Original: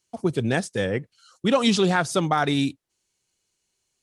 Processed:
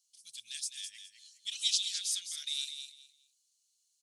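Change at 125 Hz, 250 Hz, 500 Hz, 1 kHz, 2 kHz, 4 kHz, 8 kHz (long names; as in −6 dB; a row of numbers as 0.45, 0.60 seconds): below −40 dB, below −40 dB, below −40 dB, below −40 dB, −22.0 dB, −3.0 dB, +0.5 dB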